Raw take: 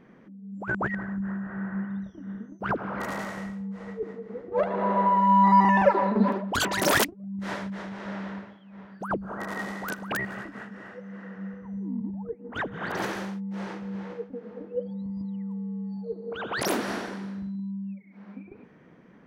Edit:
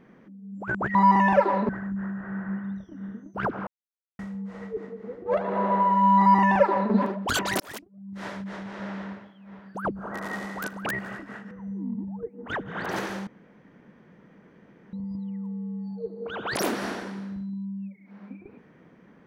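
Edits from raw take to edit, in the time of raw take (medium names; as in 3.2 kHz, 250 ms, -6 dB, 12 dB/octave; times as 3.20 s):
2.93–3.45 s: mute
5.44–6.18 s: copy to 0.95 s
6.86–7.82 s: fade in
10.77–11.57 s: delete
13.33–14.99 s: room tone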